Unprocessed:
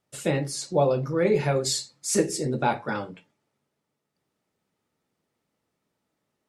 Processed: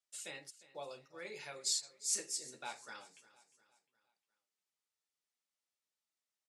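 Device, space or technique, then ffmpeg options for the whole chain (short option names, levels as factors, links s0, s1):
piezo pickup straight into a mixer: -filter_complex "[0:a]asplit=3[s0][s1][s2];[s0]afade=t=out:st=0.49:d=0.02[s3];[s1]agate=range=0.0224:threshold=0.0398:ratio=16:detection=peak,afade=t=in:st=0.49:d=0.02,afade=t=out:st=1.82:d=0.02[s4];[s2]afade=t=in:st=1.82:d=0.02[s5];[s3][s4][s5]amix=inputs=3:normalize=0,lowpass=7500,aderivative,aecho=1:1:354|708|1062|1416:0.119|0.0535|0.0241|0.0108,volume=0.668"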